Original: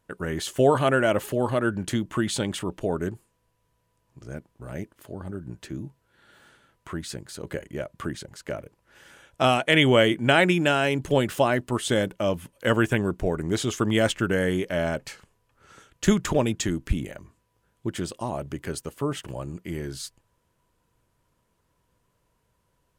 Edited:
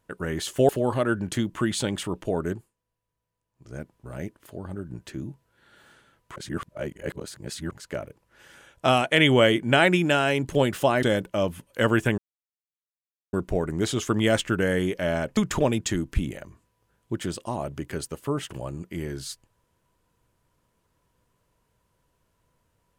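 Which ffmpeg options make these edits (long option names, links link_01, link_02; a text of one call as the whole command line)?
ffmpeg -i in.wav -filter_complex "[0:a]asplit=9[link_01][link_02][link_03][link_04][link_05][link_06][link_07][link_08][link_09];[link_01]atrim=end=0.692[link_10];[link_02]atrim=start=1.248:end=3.29,asetpts=PTS-STARTPTS,afade=type=out:start_time=1.832:duration=0.21:silence=0.237137[link_11];[link_03]atrim=start=3.29:end=4.1,asetpts=PTS-STARTPTS,volume=-12.5dB[link_12];[link_04]atrim=start=4.1:end=6.922,asetpts=PTS-STARTPTS,afade=type=in:duration=0.21:silence=0.237137[link_13];[link_05]atrim=start=6.918:end=8.272,asetpts=PTS-STARTPTS,areverse[link_14];[link_06]atrim=start=8.268:end=11.592[link_15];[link_07]atrim=start=11.888:end=13.04,asetpts=PTS-STARTPTS,afade=type=out:start_time=1.148:duration=0.004:curve=hsin,apad=pad_dur=1.15[link_16];[link_08]atrim=start=13.04:end=15.082,asetpts=PTS-STARTPTS,afade=type=in:duration=0.004:curve=hsin[link_17];[link_09]atrim=start=16.108[link_18];[link_11][link_12][link_13]concat=n=3:v=0:a=1[link_19];[link_10][link_19]acrossfade=duration=0.004:curve1=hsin:curve2=hsin[link_20];[link_20][link_14]acrossfade=duration=0.004:curve1=hsin:curve2=hsin[link_21];[link_21][link_15]acrossfade=duration=0.004:curve1=hsin:curve2=hsin[link_22];[link_16][link_17]concat=n=2:v=0:a=1[link_23];[link_22][link_23]acrossfade=duration=0.004:curve1=hsin:curve2=hsin[link_24];[link_24][link_18]acrossfade=duration=0.004:curve1=hsin:curve2=hsin" out.wav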